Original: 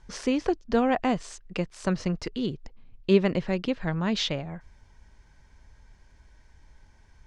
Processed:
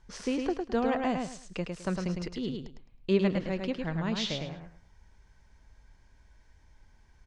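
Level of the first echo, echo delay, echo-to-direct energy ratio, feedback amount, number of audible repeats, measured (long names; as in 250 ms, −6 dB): −4.5 dB, 106 ms, −4.0 dB, 24%, 3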